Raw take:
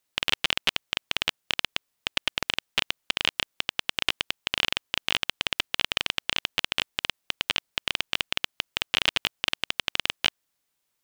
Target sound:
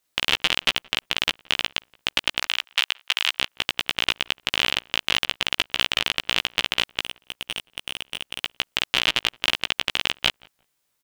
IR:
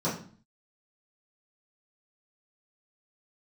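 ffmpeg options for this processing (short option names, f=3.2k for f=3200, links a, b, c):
-filter_complex "[0:a]asettb=1/sr,asplit=3[a][b][c];[a]atrim=end=2.414[d];[b]atrim=start=2.41:end=3.31,asetpts=PTS-STARTPTS,afade=t=in:d=0.004:c=qsin,afade=t=out:st=0.896:d=0.004:c=qsin,highpass=930[e];[c]atrim=start=3.306[f];[d][e]acrossfade=d=0.004:c1=hsin:c2=qsin[g];[g][f]acrossfade=d=0.004:c1=qsin:c2=hsin,asplit=3[h][i][j];[h]afade=t=out:st=7.01:d=0.02[k];[i]aeval=exprs='(tanh(7.94*val(0)+0.35)-tanh(0.35))/7.94':c=same,afade=t=in:st=7.01:d=0.02,afade=t=out:st=8.43:d=0.02[l];[j]afade=t=in:st=8.43:d=0.02[m];[k][l][m]amix=inputs=3:normalize=0,asplit=2[n][o];[o]adelay=16,volume=-4dB[p];[n][p]amix=inputs=2:normalize=0,asplit=2[q][r];[r]adelay=173,lowpass=f=1.5k:p=1,volume=-24dB,asplit=2[s][t];[t]adelay=173,lowpass=f=1.5k:p=1,volume=0.2[u];[q][s][u]amix=inputs=3:normalize=0,volume=2.5dB"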